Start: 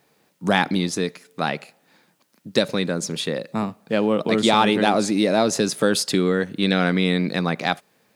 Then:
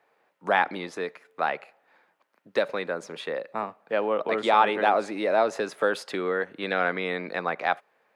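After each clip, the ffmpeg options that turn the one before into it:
ffmpeg -i in.wav -filter_complex "[0:a]acrossover=split=440 2400:gain=0.0891 1 0.1[link_01][link_02][link_03];[link_01][link_02][link_03]amix=inputs=3:normalize=0" out.wav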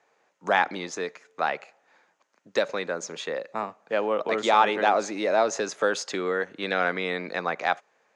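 ffmpeg -i in.wav -af "lowpass=frequency=6600:width_type=q:width=5.2" out.wav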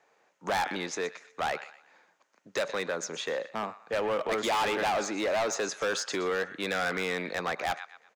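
ffmpeg -i in.wav -filter_complex "[0:a]acrossover=split=940[link_01][link_02];[link_01]asoftclip=type=tanh:threshold=-24.5dB[link_03];[link_02]aecho=1:1:122|244|366:0.188|0.0622|0.0205[link_04];[link_03][link_04]amix=inputs=2:normalize=0,asoftclip=type=hard:threshold=-25dB" out.wav

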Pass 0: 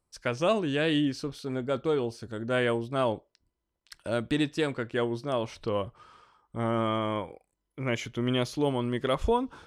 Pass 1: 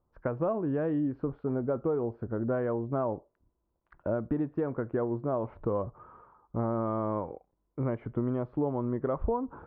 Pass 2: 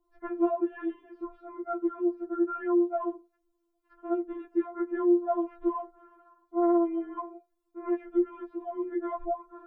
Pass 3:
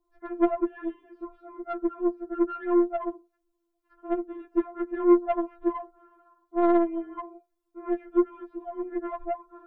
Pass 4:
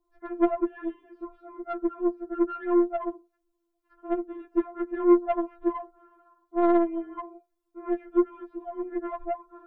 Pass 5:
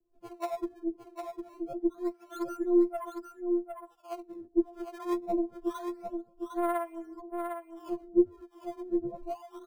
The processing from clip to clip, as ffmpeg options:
ffmpeg -i in.wav -af "acompressor=threshold=-31dB:ratio=6,lowpass=frequency=1200:width=0.5412,lowpass=frequency=1200:width=1.3066,volume=5dB" out.wav
ffmpeg -i in.wav -af "afftfilt=real='re*4*eq(mod(b,16),0)':imag='im*4*eq(mod(b,16),0)':win_size=2048:overlap=0.75,volume=4.5dB" out.wav
ffmpeg -i in.wav -af "aeval=exprs='0.178*(cos(1*acos(clip(val(0)/0.178,-1,1)))-cos(1*PI/2))+0.0316*(cos(3*acos(clip(val(0)/0.178,-1,1)))-cos(3*PI/2))+0.00447*(cos(6*acos(clip(val(0)/0.178,-1,1)))-cos(6*PI/2))':channel_layout=same,volume=5.5dB" out.wav
ffmpeg -i in.wav -af anull out.wav
ffmpeg -i in.wav -filter_complex "[0:a]acrossover=split=100|260|1200[link_01][link_02][link_03][link_04];[link_04]acrusher=samples=18:mix=1:aa=0.000001:lfo=1:lforange=28.8:lforate=0.26[link_05];[link_01][link_02][link_03][link_05]amix=inputs=4:normalize=0,acrossover=split=630[link_06][link_07];[link_06]aeval=exprs='val(0)*(1-1/2+1/2*cos(2*PI*1.1*n/s))':channel_layout=same[link_08];[link_07]aeval=exprs='val(0)*(1-1/2-1/2*cos(2*PI*1.1*n/s))':channel_layout=same[link_09];[link_08][link_09]amix=inputs=2:normalize=0,aecho=1:1:755:0.501" out.wav

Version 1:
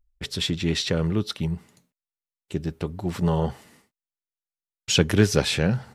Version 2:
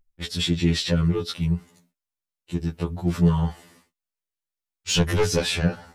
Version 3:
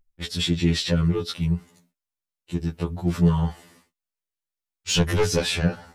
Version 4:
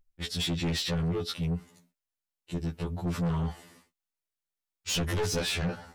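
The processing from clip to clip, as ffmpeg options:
ffmpeg -i in.wav -af "aeval=exprs='0.668*sin(PI/2*2*val(0)/0.668)':channel_layout=same,afftfilt=real='re*2*eq(mod(b,4),0)':imag='im*2*eq(mod(b,4),0)':win_size=2048:overlap=0.75,volume=-7dB" out.wav
ffmpeg -i in.wav -af anull out.wav
ffmpeg -i in.wav -af "asoftclip=type=tanh:threshold=-23.5dB,volume=-2dB" out.wav

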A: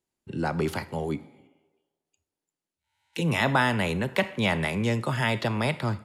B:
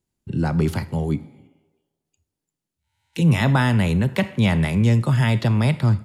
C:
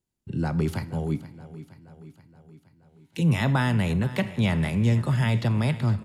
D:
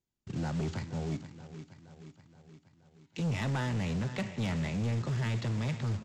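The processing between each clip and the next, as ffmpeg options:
ffmpeg -i in.wav -af "bass=frequency=250:gain=13,treble=frequency=4000:gain=3" out.wav
ffmpeg -i in.wav -af "aecho=1:1:474|948|1422|1896|2370|2844:0.15|0.0883|0.0521|0.0307|0.0181|0.0107,volume=-5dB" out.wav
ffmpeg -i in.wav -af "aresample=16000,acrusher=bits=3:mode=log:mix=0:aa=0.000001,aresample=44100,asoftclip=type=tanh:threshold=-22.5dB,volume=-5dB" out.wav

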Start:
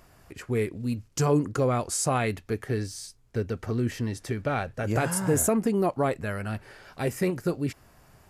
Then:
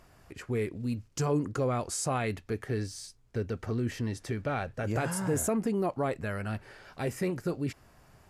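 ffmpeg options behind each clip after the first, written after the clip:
ffmpeg -i in.wav -filter_complex "[0:a]highshelf=frequency=12000:gain=-8.5,asplit=2[link_01][link_02];[link_02]alimiter=limit=-23.5dB:level=0:latency=1:release=17,volume=-0.5dB[link_03];[link_01][link_03]amix=inputs=2:normalize=0,volume=-8dB" out.wav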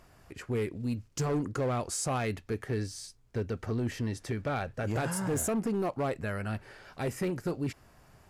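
ffmpeg -i in.wav -af "asoftclip=type=hard:threshold=-25.5dB" out.wav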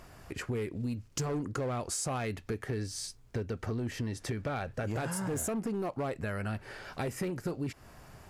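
ffmpeg -i in.wav -af "acompressor=threshold=-39dB:ratio=4,volume=6dB" out.wav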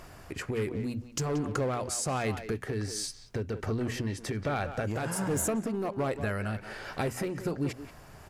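ffmpeg -i in.wav -filter_complex "[0:a]bandreject=frequency=60:width_type=h:width=6,bandreject=frequency=120:width_type=h:width=6,bandreject=frequency=180:width_type=h:width=6,bandreject=frequency=240:width_type=h:width=6,asplit=2[link_01][link_02];[link_02]adelay=180,highpass=300,lowpass=3400,asoftclip=type=hard:threshold=-30.5dB,volume=-9dB[link_03];[link_01][link_03]amix=inputs=2:normalize=0,tremolo=f=1.3:d=0.28,volume=4.5dB" out.wav

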